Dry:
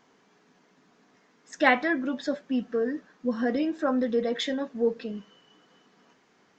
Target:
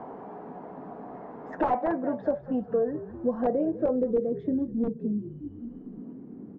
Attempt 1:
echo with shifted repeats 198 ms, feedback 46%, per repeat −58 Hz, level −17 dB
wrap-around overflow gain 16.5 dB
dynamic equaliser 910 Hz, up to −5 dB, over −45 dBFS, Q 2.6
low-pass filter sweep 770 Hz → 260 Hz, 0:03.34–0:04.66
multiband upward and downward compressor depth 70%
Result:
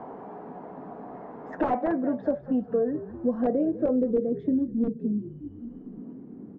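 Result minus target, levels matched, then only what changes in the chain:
1,000 Hz band −3.0 dB
change: dynamic equaliser 260 Hz, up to −5 dB, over −45 dBFS, Q 2.6

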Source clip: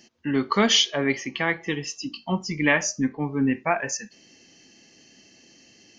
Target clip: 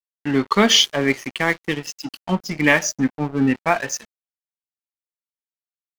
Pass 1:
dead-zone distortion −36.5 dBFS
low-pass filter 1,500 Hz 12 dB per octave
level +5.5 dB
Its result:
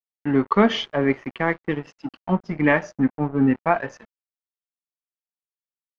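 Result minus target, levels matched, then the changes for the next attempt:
2,000 Hz band −2.5 dB
remove: low-pass filter 1,500 Hz 12 dB per octave

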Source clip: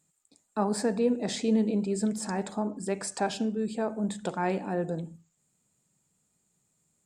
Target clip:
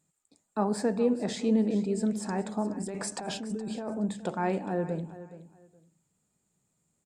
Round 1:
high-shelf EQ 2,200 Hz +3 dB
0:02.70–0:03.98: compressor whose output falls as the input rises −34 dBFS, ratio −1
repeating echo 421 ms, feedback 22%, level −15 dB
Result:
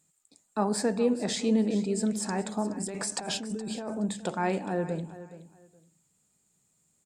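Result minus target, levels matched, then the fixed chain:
4,000 Hz band +5.0 dB
high-shelf EQ 2,200 Hz −5 dB
0:02.70–0:03.98: compressor whose output falls as the input rises −34 dBFS, ratio −1
repeating echo 421 ms, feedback 22%, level −15 dB

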